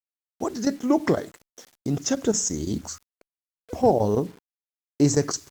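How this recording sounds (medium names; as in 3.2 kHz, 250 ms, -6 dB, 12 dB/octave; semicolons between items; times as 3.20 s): chopped level 6 Hz, depth 65%, duty 90%; a quantiser's noise floor 8-bit, dither none; Opus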